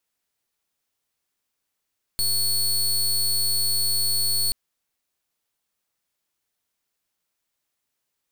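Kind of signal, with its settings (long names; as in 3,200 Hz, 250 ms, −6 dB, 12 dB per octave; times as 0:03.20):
pulse wave 4,400 Hz, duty 24% −22 dBFS 2.33 s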